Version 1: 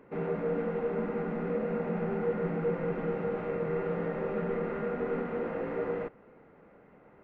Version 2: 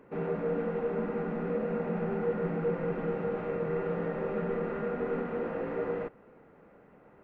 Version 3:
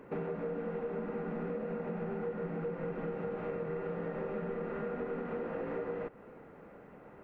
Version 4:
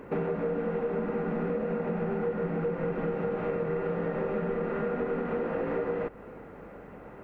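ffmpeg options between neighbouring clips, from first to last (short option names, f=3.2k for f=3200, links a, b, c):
-af "bandreject=f=2.1k:w=22"
-af "acompressor=threshold=-38dB:ratio=10,volume=4dB"
-af "aeval=exprs='val(0)+0.000631*(sin(2*PI*50*n/s)+sin(2*PI*2*50*n/s)/2+sin(2*PI*3*50*n/s)/3+sin(2*PI*4*50*n/s)/4+sin(2*PI*5*50*n/s)/5)':c=same,volume=7dB"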